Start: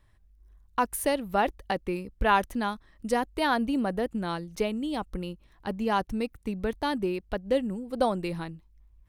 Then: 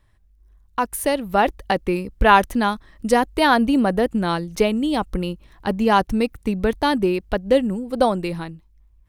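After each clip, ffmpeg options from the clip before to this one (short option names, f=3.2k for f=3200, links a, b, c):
-af "dynaudnorm=f=280:g=9:m=7.5dB,volume=2.5dB"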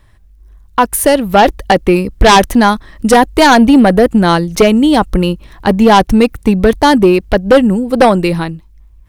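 -af "aeval=exprs='0.794*sin(PI/2*2.51*val(0)/0.794)':c=same,volume=1dB"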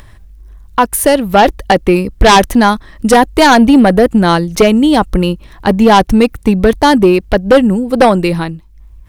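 -af "acompressor=mode=upward:threshold=-28dB:ratio=2.5"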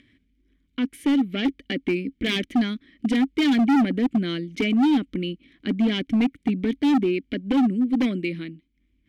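-filter_complex "[0:a]asplit=3[a][b][c];[a]bandpass=f=270:t=q:w=8,volume=0dB[d];[b]bandpass=f=2.29k:t=q:w=8,volume=-6dB[e];[c]bandpass=f=3.01k:t=q:w=8,volume=-9dB[f];[d][e][f]amix=inputs=3:normalize=0,volume=16dB,asoftclip=hard,volume=-16dB"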